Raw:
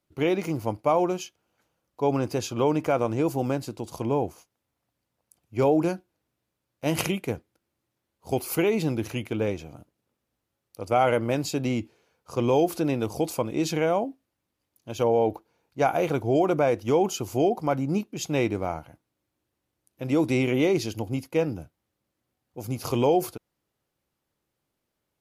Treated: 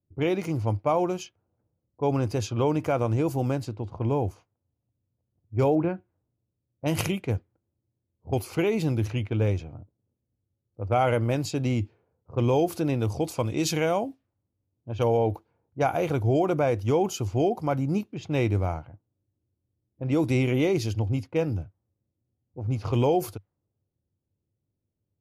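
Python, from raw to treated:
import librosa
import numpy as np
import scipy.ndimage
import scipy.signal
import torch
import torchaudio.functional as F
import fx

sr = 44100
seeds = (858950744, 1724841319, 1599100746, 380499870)

y = fx.lowpass(x, sr, hz=2500.0, slope=24, at=(5.75, 6.86))
y = fx.high_shelf(y, sr, hz=2300.0, db=7.5, at=(13.37, 15.17))
y = fx.env_lowpass(y, sr, base_hz=400.0, full_db=-23.0)
y = fx.peak_eq(y, sr, hz=97.0, db=14.5, octaves=0.7)
y = y * 10.0 ** (-2.0 / 20.0)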